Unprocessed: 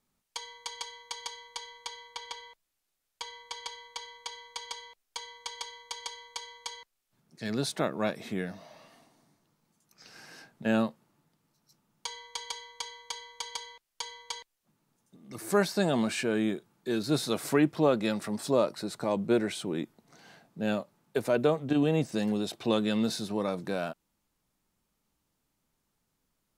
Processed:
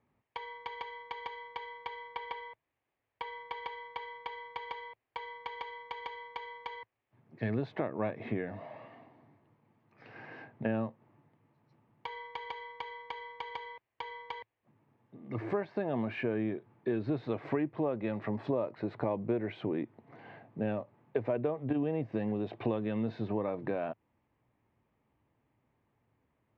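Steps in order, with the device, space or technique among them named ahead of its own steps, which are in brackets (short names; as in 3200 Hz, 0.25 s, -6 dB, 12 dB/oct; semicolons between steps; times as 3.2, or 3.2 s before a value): bass amplifier (compressor 6:1, threshold -35 dBFS, peak gain reduction 15.5 dB; speaker cabinet 72–2200 Hz, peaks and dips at 110 Hz +9 dB, 180 Hz -9 dB, 1400 Hz -9 dB); gain +6.5 dB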